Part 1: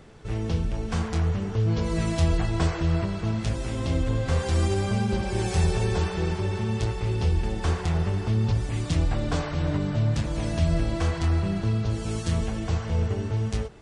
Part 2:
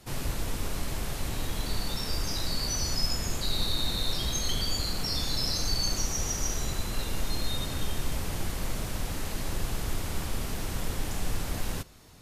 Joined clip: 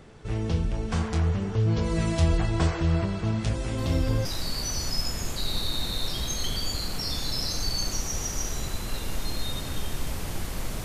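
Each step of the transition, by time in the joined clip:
part 1
3.78 s: add part 2 from 1.83 s 0.47 s -10 dB
4.25 s: go over to part 2 from 2.30 s

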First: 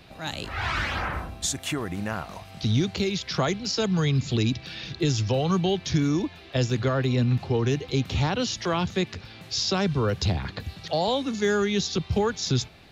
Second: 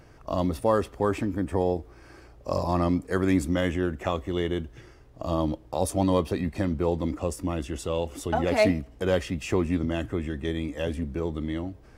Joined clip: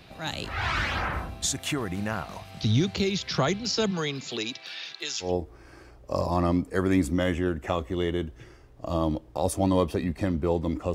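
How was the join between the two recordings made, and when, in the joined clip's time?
first
3.90–5.34 s: high-pass 250 Hz -> 1.4 kHz
5.27 s: go over to second from 1.64 s, crossfade 0.14 s

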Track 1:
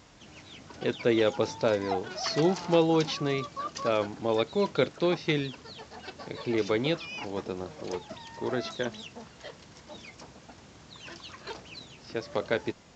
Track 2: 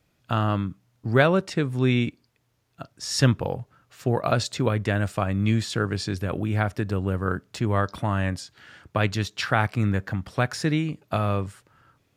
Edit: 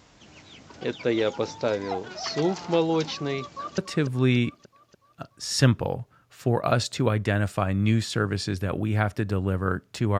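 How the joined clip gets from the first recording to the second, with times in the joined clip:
track 1
3.43–3.78 s: echo throw 290 ms, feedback 60%, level -10 dB
3.78 s: go over to track 2 from 1.38 s

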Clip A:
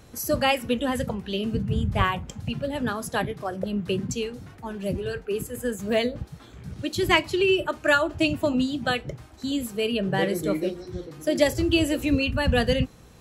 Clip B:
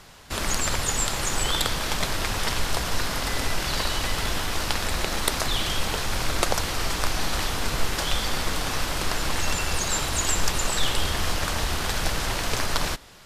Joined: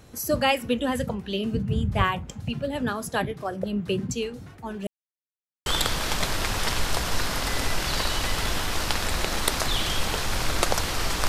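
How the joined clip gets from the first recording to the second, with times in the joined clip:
clip A
4.87–5.66 s: mute
5.66 s: go over to clip B from 1.46 s

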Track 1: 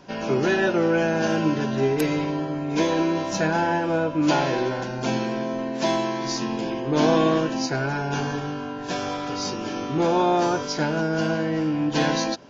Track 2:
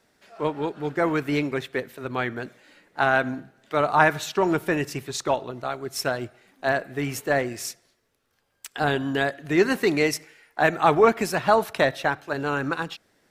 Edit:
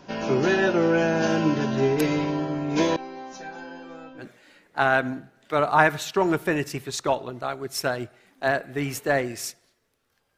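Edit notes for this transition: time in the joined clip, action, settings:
track 1
2.96–4.27 s: chord resonator C4 fifth, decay 0.2 s
4.22 s: go over to track 2 from 2.43 s, crossfade 0.10 s

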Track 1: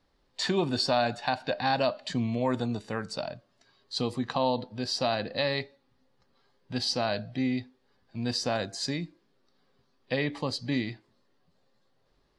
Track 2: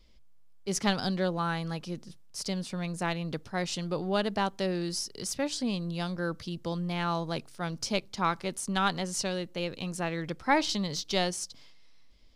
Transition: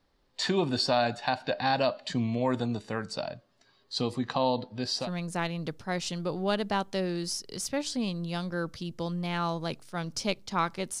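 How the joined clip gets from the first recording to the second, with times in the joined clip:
track 1
5.04 s: go over to track 2 from 2.70 s, crossfade 0.12 s

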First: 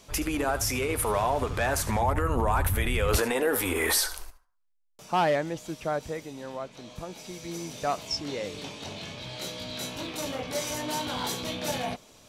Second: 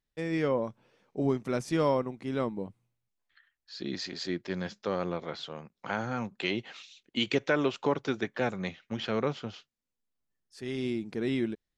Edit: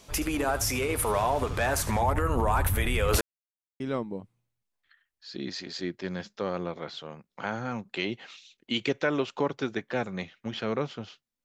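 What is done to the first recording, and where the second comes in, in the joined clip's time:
first
3.21–3.80 s: mute
3.80 s: go over to second from 2.26 s

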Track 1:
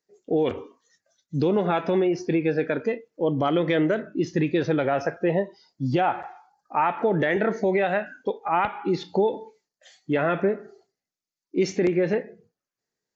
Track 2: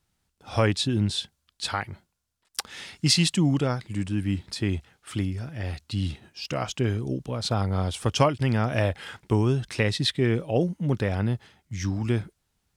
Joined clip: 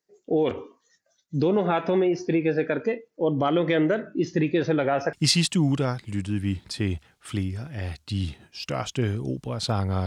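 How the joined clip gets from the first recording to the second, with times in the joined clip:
track 1
5.13 s: go over to track 2 from 2.95 s

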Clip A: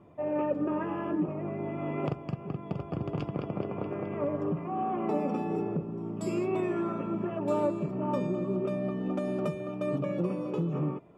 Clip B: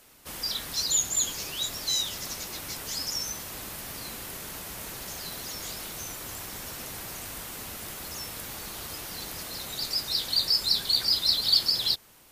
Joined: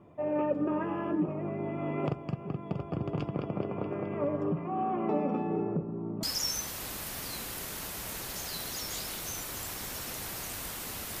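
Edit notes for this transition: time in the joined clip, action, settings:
clip A
4.54–6.23 s: low-pass 6.2 kHz -> 1.2 kHz
6.23 s: go over to clip B from 2.95 s

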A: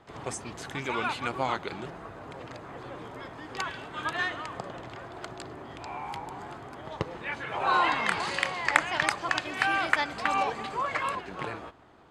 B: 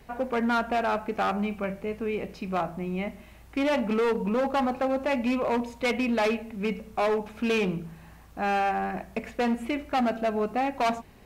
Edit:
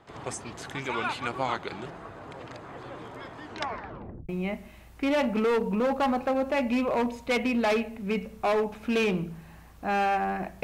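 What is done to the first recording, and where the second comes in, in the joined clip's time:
A
3.43 s: tape stop 0.86 s
4.29 s: go over to B from 2.83 s

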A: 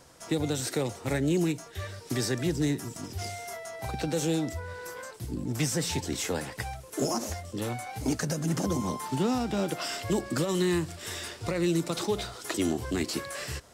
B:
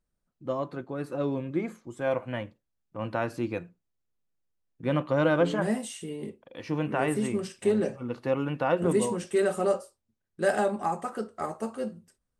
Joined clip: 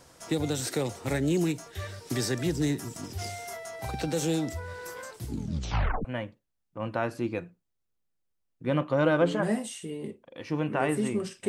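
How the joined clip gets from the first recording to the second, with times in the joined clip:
A
5.28 s: tape stop 0.77 s
6.05 s: go over to B from 2.24 s

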